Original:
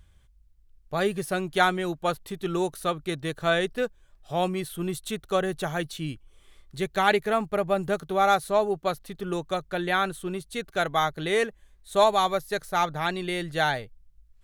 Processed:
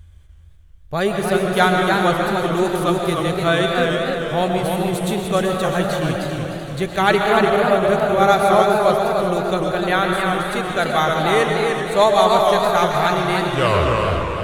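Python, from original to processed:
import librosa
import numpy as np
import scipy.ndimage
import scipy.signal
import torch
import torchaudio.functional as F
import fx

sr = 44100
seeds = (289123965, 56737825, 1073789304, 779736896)

p1 = fx.tape_stop_end(x, sr, length_s=1.01)
p2 = fx.peak_eq(p1, sr, hz=82.0, db=12.5, octaves=0.87)
p3 = fx.notch(p2, sr, hz=5300.0, q=21.0)
p4 = p3 + fx.echo_feedback(p3, sr, ms=383, feedback_pct=55, wet_db=-10, dry=0)
p5 = fx.rev_freeverb(p4, sr, rt60_s=1.5, hf_ratio=0.5, predelay_ms=85, drr_db=3.0)
p6 = fx.echo_warbled(p5, sr, ms=299, feedback_pct=33, rate_hz=2.8, cents=142, wet_db=-4.5)
y = p6 * librosa.db_to_amplitude(5.0)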